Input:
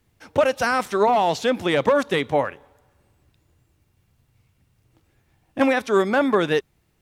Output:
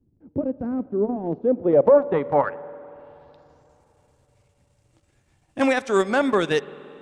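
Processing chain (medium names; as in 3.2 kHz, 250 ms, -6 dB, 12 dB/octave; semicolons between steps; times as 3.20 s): low-pass sweep 290 Hz -> 8.1 kHz, 1.22–3.84 s; transient shaper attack -3 dB, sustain -8 dB; spring tank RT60 3.6 s, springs 47/54 ms, chirp 30 ms, DRR 18 dB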